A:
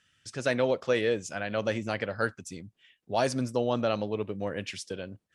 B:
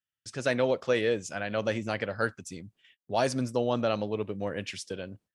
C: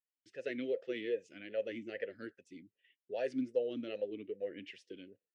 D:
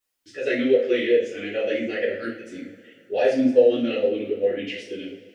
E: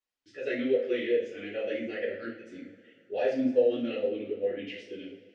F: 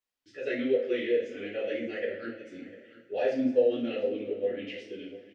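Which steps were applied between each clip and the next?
gate -60 dBFS, range -28 dB
talking filter e-i 2.5 Hz
reverberation, pre-delay 3 ms, DRR -8.5 dB; trim +8 dB
distance through air 85 m; trim -7.5 dB
delay 699 ms -17.5 dB

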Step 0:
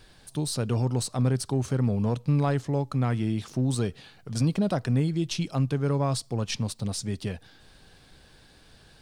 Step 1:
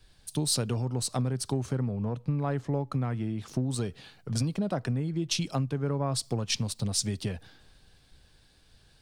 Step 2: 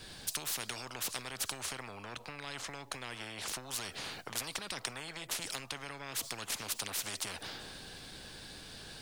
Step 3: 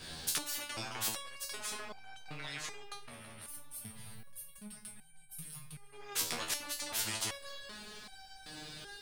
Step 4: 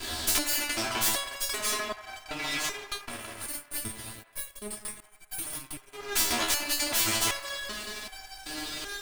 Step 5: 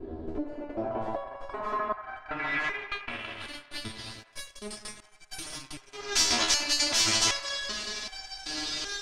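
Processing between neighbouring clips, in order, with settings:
compression 12:1, threshold -32 dBFS, peak gain reduction 13 dB; three bands expanded up and down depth 70%; trim +6 dB
spectrum-flattening compressor 10:1; trim +1 dB
time-frequency box 2.94–5.93 s, 230–8400 Hz -18 dB; feedback echo behind a low-pass 165 ms, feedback 81%, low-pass 3 kHz, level -14.5 dB; resonator arpeggio 2.6 Hz 80–770 Hz; trim +12 dB
comb filter that takes the minimum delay 3 ms; waveshaping leveller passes 3; feedback echo behind a band-pass 89 ms, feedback 70%, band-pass 1.2 kHz, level -13 dB; trim +2 dB
low-pass sweep 410 Hz -> 5.7 kHz, 0.31–4.31 s

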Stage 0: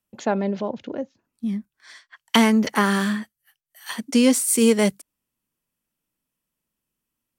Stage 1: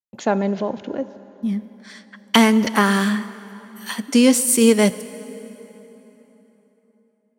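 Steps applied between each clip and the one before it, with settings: expander -51 dBFS; plate-style reverb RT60 3.8 s, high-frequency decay 0.7×, DRR 14.5 dB; trim +3 dB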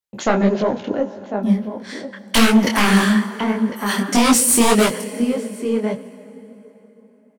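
echo from a far wall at 180 m, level -11 dB; sine folder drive 11 dB, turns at -1 dBFS; detune thickener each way 57 cents; trim -5 dB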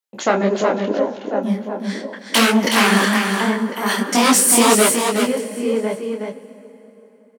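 high-pass 260 Hz 12 dB/octave; delay 370 ms -5 dB; trim +1.5 dB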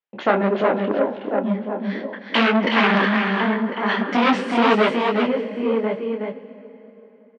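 low-pass 3.1 kHz 24 dB/octave; transformer saturation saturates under 970 Hz

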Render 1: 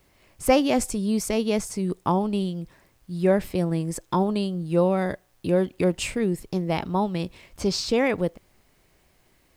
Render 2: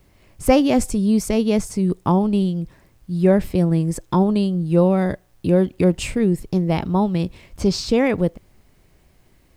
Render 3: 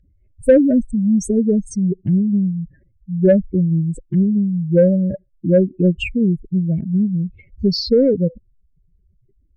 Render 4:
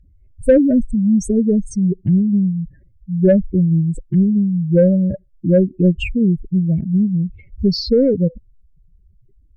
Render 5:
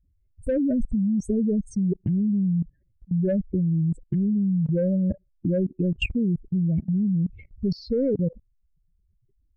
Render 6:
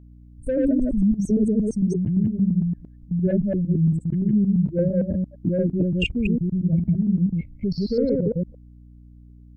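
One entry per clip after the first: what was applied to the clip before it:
bass shelf 310 Hz +9 dB; trim +1 dB
spectral contrast enhancement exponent 3.4; overdrive pedal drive 14 dB, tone 2.4 kHz, clips at -5 dBFS; elliptic band-stop 570–1600 Hz, stop band 40 dB; trim +3.5 dB
bass shelf 120 Hz +9 dB; trim -1 dB
level held to a coarse grid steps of 22 dB
chunks repeated in reverse 114 ms, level -0.5 dB; hum 60 Hz, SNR 24 dB

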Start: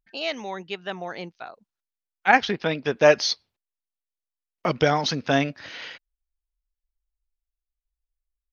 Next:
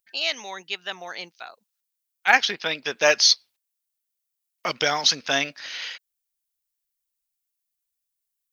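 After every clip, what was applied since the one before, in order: tilt EQ +4.5 dB/octave; trim -1.5 dB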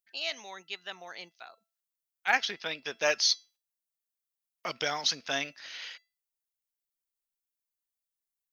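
feedback comb 670 Hz, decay 0.31 s, mix 50%; trim -3 dB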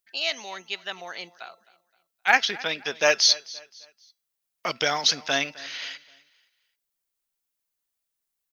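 feedback delay 261 ms, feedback 36%, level -20.5 dB; trim +7 dB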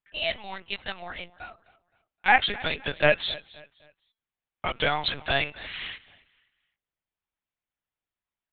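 LPC vocoder at 8 kHz pitch kept; level-controlled noise filter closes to 2.9 kHz, open at -25.5 dBFS

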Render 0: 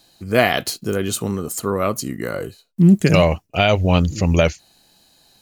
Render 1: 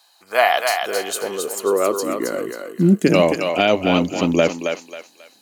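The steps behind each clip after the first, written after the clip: high-pass sweep 960 Hz -> 270 Hz, 0.11–2.47 s; on a send: thinning echo 270 ms, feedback 34%, high-pass 540 Hz, level -4 dB; on the sum: trim -1.5 dB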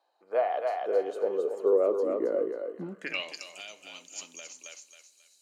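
compression 4:1, threshold -16 dBFS, peak gain reduction 6.5 dB; band-pass sweep 480 Hz -> 7.6 kHz, 2.68–3.48 s; on a send at -12.5 dB: reverberation, pre-delay 3 ms; on the sum: trim -1 dB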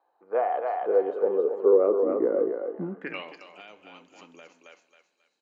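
low-pass 1.4 kHz 12 dB/octave; peaking EQ 620 Hz -8 dB 0.25 oct; frequency-shifting echo 134 ms, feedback 49%, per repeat +100 Hz, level -23 dB; trim +5.5 dB

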